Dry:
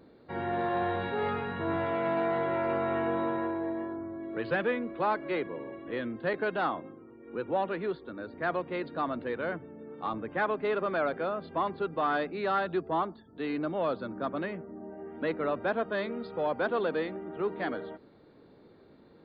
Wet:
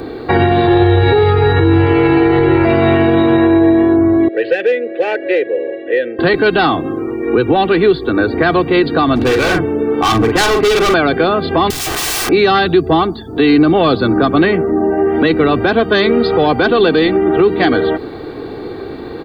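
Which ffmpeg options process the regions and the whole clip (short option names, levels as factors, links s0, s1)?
-filter_complex "[0:a]asettb=1/sr,asplit=3[s0][s1][s2];[s0]atrim=end=0.674[s3];[s1]atrim=start=0.67:end=2.65,asetpts=PTS-STARTPTS,afade=t=in:d=0.004:c=qsin,afade=t=out:st=1.976:d=0.004:c=qsin,lowpass=f=2200:p=1,aecho=1:1:2.3:0.98,atrim=end_sample=87318[s4];[s2]atrim=start=2.646[s5];[s3][s4]acrossfade=d=0.004:c1=hsin:c2=qsin[s6];[s6][s5]acrossfade=d=0.004:c1=qsin:c2=hsin,asettb=1/sr,asplit=3[s7][s8][s9];[s7]atrim=end=4.284[s10];[s8]atrim=start=4.28:end=6.19,asetpts=PTS-STARTPTS,afade=t=in:d=0.004:c=qsin,afade=t=out:st=1.906:d=0.004:c=qsin,bass=f=250:g=-2,treble=f=4000:g=6,volume=17.8,asoftclip=hard,volume=0.0562,asplit=3[s11][s12][s13];[s11]bandpass=f=530:t=q:w=8,volume=1[s14];[s12]bandpass=f=1840:t=q:w=8,volume=0.501[s15];[s13]bandpass=f=2480:t=q:w=8,volume=0.355[s16];[s14][s15][s16]amix=inputs=3:normalize=0[s17];[s9]atrim=start=6.186[s18];[s10][s17]acrossfade=d=0.004:c1=hsin:c2=qsin[s19];[s19][s18]acrossfade=d=0.004:c1=qsin:c2=hsin,asettb=1/sr,asplit=3[s20][s21][s22];[s20]atrim=end=9.154[s23];[s21]atrim=start=9.15:end=10.94,asetpts=PTS-STARTPTS,afade=t=in:d=0.004:c=qsin,afade=t=out:st=1.786:d=0.004:c=qsin,asplit=2[s24][s25];[s25]adelay=44,volume=0.473[s26];[s24][s26]amix=inputs=2:normalize=0,atrim=end_sample=78939,asoftclip=type=hard:threshold=0.02[s27];[s22]atrim=start=10.936[s28];[s23][s27]acrossfade=d=0.004:c1=hsin:c2=qsin[s29];[s29][s28]acrossfade=d=0.004:c1=qsin:c2=hsin,asettb=1/sr,asplit=3[s30][s31][s32];[s30]atrim=end=11.704[s33];[s31]atrim=start=11.7:end=12.29,asetpts=PTS-STARTPTS,afade=t=in:d=0.004:c=qsin,afade=t=out:st=0.586:d=0.004:c=qsin,asubboost=boost=3:cutoff=77,acrossover=split=330|3000[s34][s35][s36];[s35]acompressor=threshold=0.00794:ratio=10:attack=3.2:release=140:knee=2.83:detection=peak[s37];[s34][s37][s36]amix=inputs=3:normalize=0,aeval=exprs='(mod(158*val(0)+1,2)-1)/158':c=same[s38];[s32]atrim=start=12.286[s39];[s33][s38]acrossfade=d=0.004:c1=hsin:c2=qsin[s40];[s40][s39]acrossfade=d=0.004:c1=qsin:c2=hsin,aecho=1:1:2.6:0.56,acrossover=split=240|3000[s41][s42][s43];[s42]acompressor=threshold=0.00891:ratio=6[s44];[s41][s44][s43]amix=inputs=3:normalize=0,alimiter=level_in=35.5:limit=0.891:release=50:level=0:latency=1,volume=0.841"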